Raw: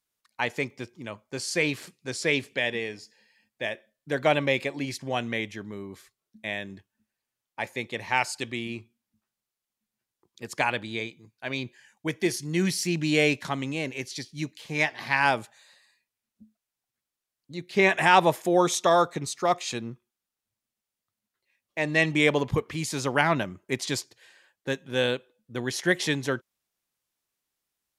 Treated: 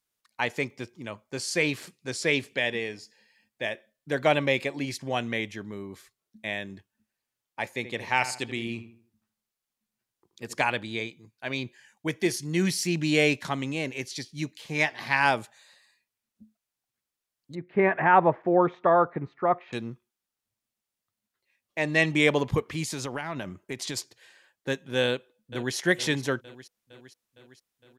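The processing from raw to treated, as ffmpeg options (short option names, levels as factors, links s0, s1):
-filter_complex "[0:a]asettb=1/sr,asplit=3[s0][s1][s2];[s0]atrim=end=7.734[s3];[s1]atrim=start=7.73:end=10.63,asetpts=PTS-STARTPTS,afade=t=in:d=0.004:c=qsin,afade=t=out:st=2.896:d=0.004:c=qsin,asplit=2[s4][s5];[s5]adelay=78,lowpass=f=2100:p=1,volume=0.282,asplit=2[s6][s7];[s7]adelay=78,lowpass=f=2100:p=1,volume=0.41,asplit=2[s8][s9];[s9]adelay=78,lowpass=f=2100:p=1,volume=0.41,asplit=2[s10][s11];[s11]adelay=78,lowpass=f=2100:p=1,volume=0.41[s12];[s4][s6][s8][s10][s12]amix=inputs=5:normalize=0,atrim=end_sample=127890[s13];[s2]atrim=start=10.626[s14];[s3][s13]acrossfade=d=0.004:c1=hsin:c2=qsin[s15];[s15][s14]acrossfade=d=0.004:c1=qsin:c2=hsin,asettb=1/sr,asplit=3[s16][s17][s18];[s16]atrim=end=17.554[s19];[s17]atrim=start=17.55:end=19.73,asetpts=PTS-STARTPTS,afade=t=in:d=0.004:c=qsin,afade=t=out:st=2.176:d=0.004:c=qsin,lowpass=f=1800:w=0.5412,lowpass=f=1800:w=1.3066[s20];[s18]atrim=start=19.726[s21];[s19][s20]acrossfade=d=0.004:c1=hsin:c2=qsin[s22];[s22][s21]acrossfade=d=0.004:c1=qsin:c2=hsin,asettb=1/sr,asplit=3[s23][s24][s25];[s23]atrim=end=22.834[s26];[s24]atrim=start=22.83:end=23.97,asetpts=PTS-STARTPTS,afade=t=in:d=0.004:c=qsin,afade=t=out:st=1.136:d=0.004:c=qsin,acompressor=threshold=0.0355:ratio=6:attack=3.2:release=140:knee=1:detection=peak[s27];[s25]atrim=start=23.966[s28];[s26][s27]acrossfade=d=0.004:c1=hsin:c2=qsin[s29];[s29][s28]acrossfade=d=0.004:c1=qsin:c2=hsin,asplit=2[s30][s31];[s31]afade=t=in:st=25.06:d=0.01,afade=t=out:st=25.75:d=0.01,aecho=0:1:460|920|1380|1840|2300|2760|3220|3680:0.211349|0.137377|0.0892949|0.0580417|0.0377271|0.0245226|0.0159397|0.0103608[s32];[s30][s32]amix=inputs=2:normalize=0"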